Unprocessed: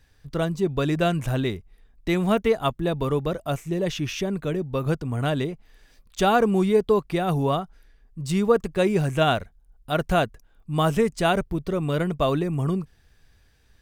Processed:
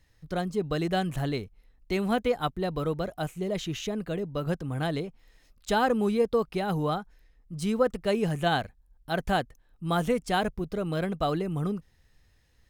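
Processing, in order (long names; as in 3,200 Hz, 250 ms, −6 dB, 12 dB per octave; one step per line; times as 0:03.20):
wrong playback speed 44.1 kHz file played as 48 kHz
level −5 dB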